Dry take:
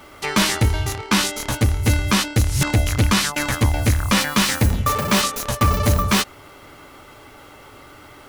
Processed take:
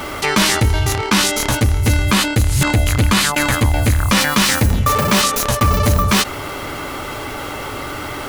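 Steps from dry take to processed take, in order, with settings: 2.03–4.10 s: peaking EQ 5.6 kHz -6.5 dB 0.23 oct; level flattener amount 50%; trim +1.5 dB

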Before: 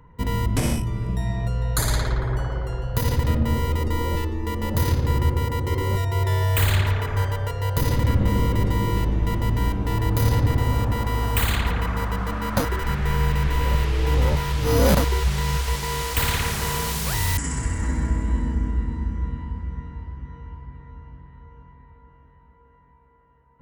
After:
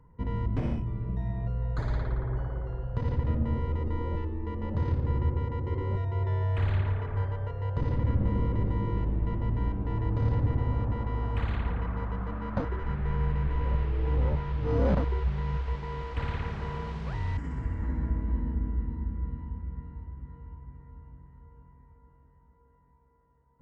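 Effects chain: tape spacing loss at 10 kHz 44 dB; trim -6 dB

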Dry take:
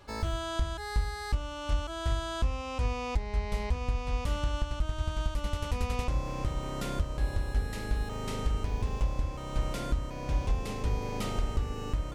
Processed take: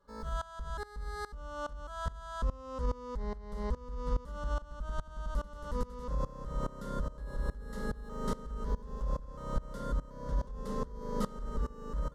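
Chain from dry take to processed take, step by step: treble shelf 3 kHz -10 dB; peak limiter -25.5 dBFS, peak gain reduction 7 dB; static phaser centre 490 Hz, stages 8; sawtooth tremolo in dB swelling 2.4 Hz, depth 20 dB; trim +7.5 dB

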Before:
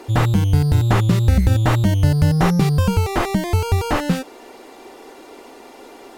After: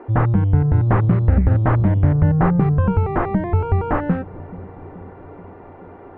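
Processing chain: low-pass 1.7 kHz 24 dB/octave; feedback echo behind a low-pass 430 ms, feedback 66%, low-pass 450 Hz, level -17 dB; 0.86–2.23 s: loudspeaker Doppler distortion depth 0.39 ms

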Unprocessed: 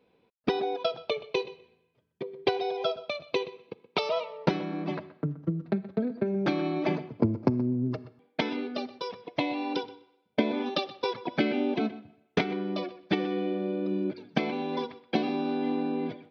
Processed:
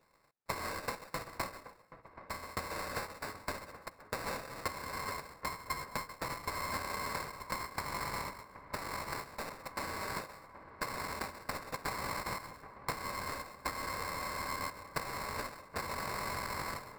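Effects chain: bit-reversed sample order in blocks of 256 samples; compression 3:1, threshold -35 dBFS, peak gain reduction 13 dB; sample-rate reducer 3.3 kHz, jitter 0%; bass shelf 64 Hz -8 dB; feedback echo behind a low-pass 746 ms, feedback 64%, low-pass 1.8 kHz, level -14 dB; speed mistake 25 fps video run at 24 fps; trim -2.5 dB

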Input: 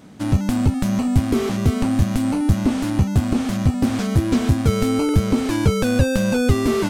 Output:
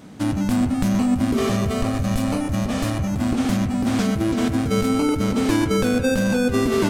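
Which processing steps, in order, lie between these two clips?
compressor with a negative ratio -20 dBFS, ratio -1; 1.37–3.14 s: comb 1.7 ms, depth 53%; on a send: bucket-brigade echo 121 ms, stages 2048, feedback 56%, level -10 dB

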